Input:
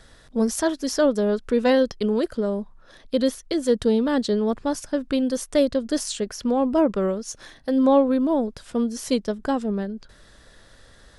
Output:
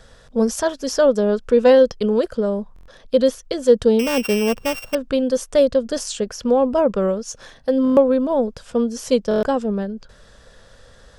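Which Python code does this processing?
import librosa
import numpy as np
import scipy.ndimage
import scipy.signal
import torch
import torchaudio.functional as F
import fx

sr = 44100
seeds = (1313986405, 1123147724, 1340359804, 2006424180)

y = fx.sample_sort(x, sr, block=16, at=(3.99, 4.95))
y = fx.graphic_eq_31(y, sr, hz=(315, 500, 2000, 4000, 10000), db=(-10, 6, -5, -4, -8))
y = fx.buffer_glitch(y, sr, at_s=(2.74, 7.83, 9.29), block=1024, repeats=5)
y = y * librosa.db_to_amplitude(3.5)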